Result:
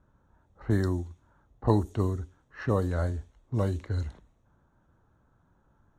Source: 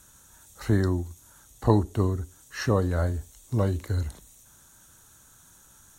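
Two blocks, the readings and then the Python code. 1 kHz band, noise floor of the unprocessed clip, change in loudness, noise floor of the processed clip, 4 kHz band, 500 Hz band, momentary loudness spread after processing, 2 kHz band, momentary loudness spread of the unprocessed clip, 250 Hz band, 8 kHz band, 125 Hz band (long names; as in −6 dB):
−3.0 dB, −56 dBFS, −3.0 dB, −68 dBFS, −8.0 dB, −3.0 dB, 13 LU, −4.5 dB, 13 LU, −3.0 dB, below −10 dB, −3.0 dB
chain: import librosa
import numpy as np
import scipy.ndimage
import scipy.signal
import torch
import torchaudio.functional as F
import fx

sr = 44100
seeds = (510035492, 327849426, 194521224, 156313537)

y = fx.env_lowpass(x, sr, base_hz=860.0, full_db=-19.0)
y = y * librosa.db_to_amplitude(-3.0)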